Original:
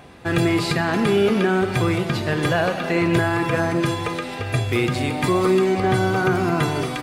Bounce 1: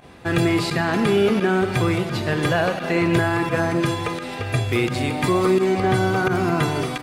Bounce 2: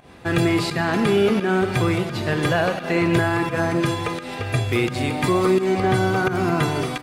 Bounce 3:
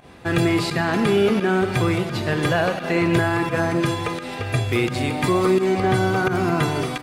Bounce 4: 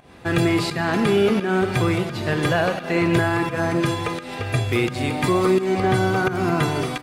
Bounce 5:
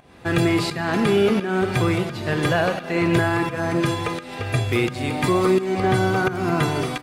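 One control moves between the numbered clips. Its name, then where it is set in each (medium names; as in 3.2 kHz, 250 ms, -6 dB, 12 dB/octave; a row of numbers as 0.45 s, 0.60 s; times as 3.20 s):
volume shaper, release: 62 ms, 146 ms, 97 ms, 214 ms, 344 ms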